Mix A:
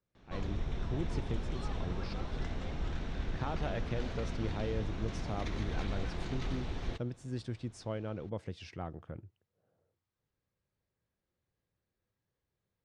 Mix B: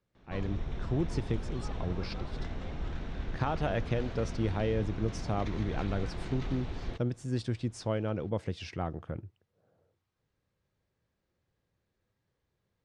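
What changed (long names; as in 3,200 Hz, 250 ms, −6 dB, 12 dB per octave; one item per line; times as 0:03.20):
speech +6.5 dB
background: add high-shelf EQ 4,600 Hz −6 dB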